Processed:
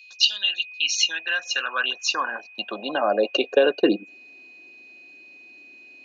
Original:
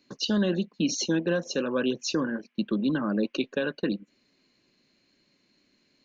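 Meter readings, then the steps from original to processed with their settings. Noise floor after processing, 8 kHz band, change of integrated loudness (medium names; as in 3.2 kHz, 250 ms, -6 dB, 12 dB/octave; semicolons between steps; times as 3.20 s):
-48 dBFS, no reading, +5.5 dB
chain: small resonant body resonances 730/2800 Hz, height 13 dB, ringing for 35 ms; whistle 2.5 kHz -50 dBFS; high-pass sweep 3.4 kHz -> 330 Hz, 0.29–4.04 s; trim +5 dB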